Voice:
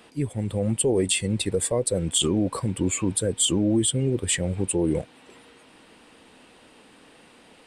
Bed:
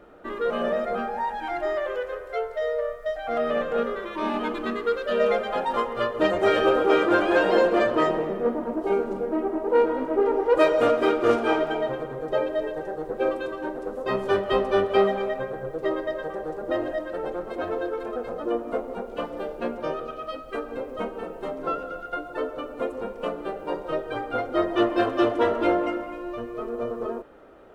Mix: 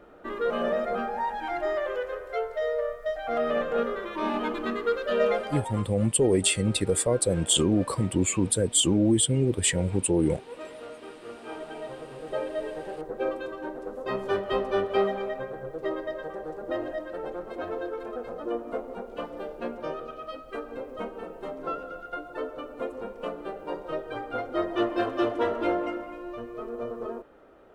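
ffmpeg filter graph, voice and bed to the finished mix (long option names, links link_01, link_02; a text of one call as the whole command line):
ffmpeg -i stem1.wav -i stem2.wav -filter_complex "[0:a]adelay=5350,volume=0dB[link_01];[1:a]volume=16.5dB,afade=type=out:start_time=5.22:duration=0.68:silence=0.0891251,afade=type=in:start_time=11.32:duration=1.35:silence=0.125893[link_02];[link_01][link_02]amix=inputs=2:normalize=0" out.wav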